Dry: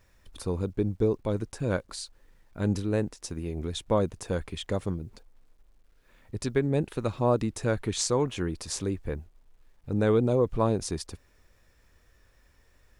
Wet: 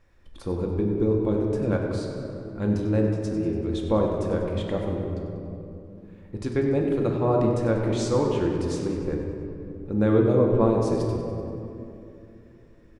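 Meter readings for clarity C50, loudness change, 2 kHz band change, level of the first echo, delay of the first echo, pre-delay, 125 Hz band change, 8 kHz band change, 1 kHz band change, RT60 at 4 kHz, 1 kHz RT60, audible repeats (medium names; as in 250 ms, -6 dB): 2.0 dB, +4.0 dB, +0.5 dB, -10.5 dB, 96 ms, 4 ms, +4.0 dB, -8.0 dB, +2.5 dB, 1.4 s, 2.5 s, 1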